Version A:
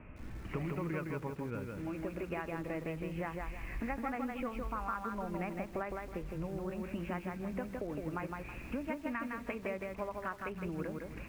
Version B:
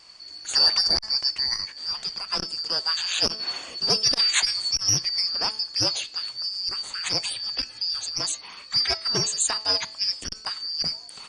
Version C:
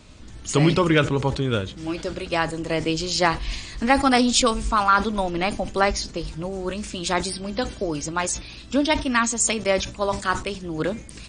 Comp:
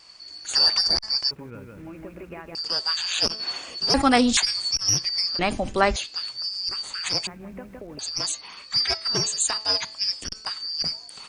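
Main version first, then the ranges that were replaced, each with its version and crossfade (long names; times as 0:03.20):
B
0:01.31–0:02.55: punch in from A
0:03.94–0:04.37: punch in from C
0:05.39–0:05.96: punch in from C
0:07.27–0:07.99: punch in from A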